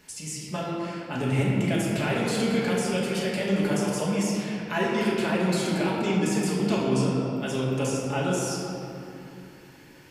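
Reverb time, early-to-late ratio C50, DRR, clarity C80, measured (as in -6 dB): 2.9 s, -1.0 dB, -6.0 dB, 0.5 dB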